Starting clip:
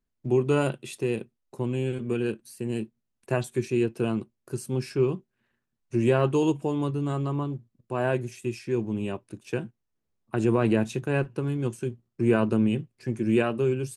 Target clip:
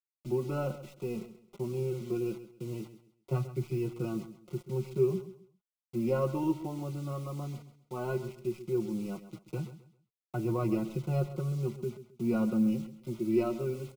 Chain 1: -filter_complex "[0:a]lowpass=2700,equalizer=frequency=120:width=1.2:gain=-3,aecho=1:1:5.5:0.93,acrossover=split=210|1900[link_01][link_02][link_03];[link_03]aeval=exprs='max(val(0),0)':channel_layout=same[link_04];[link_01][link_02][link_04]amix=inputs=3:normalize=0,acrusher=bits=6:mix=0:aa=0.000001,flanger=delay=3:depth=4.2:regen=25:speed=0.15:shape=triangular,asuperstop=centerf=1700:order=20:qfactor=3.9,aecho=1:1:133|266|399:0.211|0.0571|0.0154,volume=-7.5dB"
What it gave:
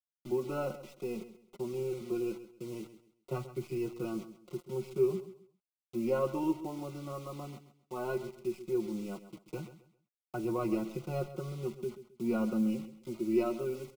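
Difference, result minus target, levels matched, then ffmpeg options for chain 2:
125 Hz band −6.5 dB
-filter_complex "[0:a]lowpass=2700,equalizer=frequency=120:width=1.2:gain=7,aecho=1:1:5.5:0.93,acrossover=split=210|1900[link_01][link_02][link_03];[link_03]aeval=exprs='max(val(0),0)':channel_layout=same[link_04];[link_01][link_02][link_04]amix=inputs=3:normalize=0,acrusher=bits=6:mix=0:aa=0.000001,flanger=delay=3:depth=4.2:regen=25:speed=0.15:shape=triangular,asuperstop=centerf=1700:order=20:qfactor=3.9,aecho=1:1:133|266|399:0.211|0.0571|0.0154,volume=-7.5dB"

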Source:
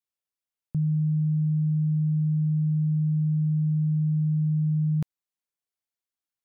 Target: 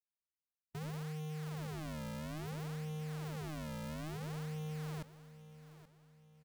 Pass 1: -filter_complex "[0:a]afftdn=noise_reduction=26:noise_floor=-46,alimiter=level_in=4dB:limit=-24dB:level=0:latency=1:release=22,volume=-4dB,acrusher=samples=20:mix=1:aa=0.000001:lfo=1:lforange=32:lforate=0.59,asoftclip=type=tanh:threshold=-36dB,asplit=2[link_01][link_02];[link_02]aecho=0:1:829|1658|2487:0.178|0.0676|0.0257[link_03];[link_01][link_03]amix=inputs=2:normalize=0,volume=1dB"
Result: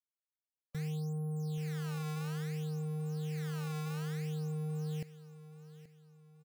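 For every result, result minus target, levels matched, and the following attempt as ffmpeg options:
sample-and-hold swept by an LFO: distortion −12 dB; soft clipping: distortion −4 dB
-filter_complex "[0:a]afftdn=noise_reduction=26:noise_floor=-46,alimiter=level_in=4dB:limit=-24dB:level=0:latency=1:release=22,volume=-4dB,acrusher=samples=67:mix=1:aa=0.000001:lfo=1:lforange=107:lforate=0.59,asoftclip=type=tanh:threshold=-36dB,asplit=2[link_01][link_02];[link_02]aecho=0:1:829|1658|2487:0.178|0.0676|0.0257[link_03];[link_01][link_03]amix=inputs=2:normalize=0,volume=1dB"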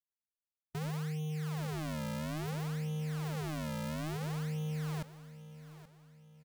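soft clipping: distortion −4 dB
-filter_complex "[0:a]afftdn=noise_reduction=26:noise_floor=-46,alimiter=level_in=4dB:limit=-24dB:level=0:latency=1:release=22,volume=-4dB,acrusher=samples=67:mix=1:aa=0.000001:lfo=1:lforange=107:lforate=0.59,asoftclip=type=tanh:threshold=-42dB,asplit=2[link_01][link_02];[link_02]aecho=0:1:829|1658|2487:0.178|0.0676|0.0257[link_03];[link_01][link_03]amix=inputs=2:normalize=0,volume=1dB"

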